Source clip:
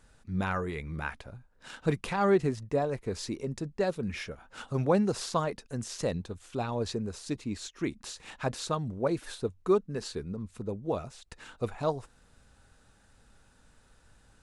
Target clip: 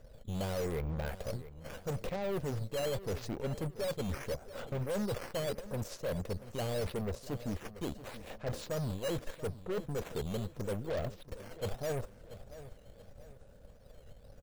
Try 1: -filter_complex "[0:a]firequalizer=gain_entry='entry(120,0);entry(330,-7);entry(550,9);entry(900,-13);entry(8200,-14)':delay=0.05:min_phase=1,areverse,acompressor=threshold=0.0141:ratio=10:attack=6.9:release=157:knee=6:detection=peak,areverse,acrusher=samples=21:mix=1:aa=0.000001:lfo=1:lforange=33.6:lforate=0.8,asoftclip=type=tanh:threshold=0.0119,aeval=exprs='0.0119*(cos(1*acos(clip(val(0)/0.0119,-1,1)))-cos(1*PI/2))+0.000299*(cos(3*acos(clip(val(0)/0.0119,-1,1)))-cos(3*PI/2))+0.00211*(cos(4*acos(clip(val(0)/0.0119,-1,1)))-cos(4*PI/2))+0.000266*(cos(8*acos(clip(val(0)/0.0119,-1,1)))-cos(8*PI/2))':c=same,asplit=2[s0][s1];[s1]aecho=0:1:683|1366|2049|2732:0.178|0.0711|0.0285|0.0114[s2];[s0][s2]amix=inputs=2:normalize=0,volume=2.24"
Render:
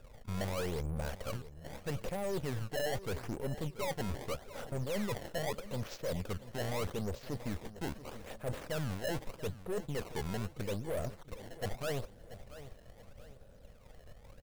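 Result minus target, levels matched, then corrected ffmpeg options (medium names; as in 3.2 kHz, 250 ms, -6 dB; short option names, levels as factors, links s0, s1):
decimation with a swept rate: distortion +10 dB; saturation: distortion +10 dB
-filter_complex "[0:a]firequalizer=gain_entry='entry(120,0);entry(330,-7);entry(550,9);entry(900,-13);entry(8200,-14)':delay=0.05:min_phase=1,areverse,acompressor=threshold=0.0141:ratio=10:attack=6.9:release=157:knee=6:detection=peak,areverse,acrusher=samples=7:mix=1:aa=0.000001:lfo=1:lforange=11.2:lforate=0.8,asoftclip=type=tanh:threshold=0.0266,aeval=exprs='0.0119*(cos(1*acos(clip(val(0)/0.0119,-1,1)))-cos(1*PI/2))+0.000299*(cos(3*acos(clip(val(0)/0.0119,-1,1)))-cos(3*PI/2))+0.00211*(cos(4*acos(clip(val(0)/0.0119,-1,1)))-cos(4*PI/2))+0.000266*(cos(8*acos(clip(val(0)/0.0119,-1,1)))-cos(8*PI/2))':c=same,asplit=2[s0][s1];[s1]aecho=0:1:683|1366|2049|2732:0.178|0.0711|0.0285|0.0114[s2];[s0][s2]amix=inputs=2:normalize=0,volume=2.24"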